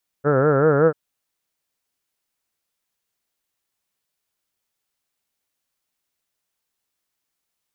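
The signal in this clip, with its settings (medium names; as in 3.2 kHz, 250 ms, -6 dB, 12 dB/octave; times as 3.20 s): formant-synthesis vowel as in heard, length 0.69 s, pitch 137 Hz, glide +2 st, vibrato depth 1.35 st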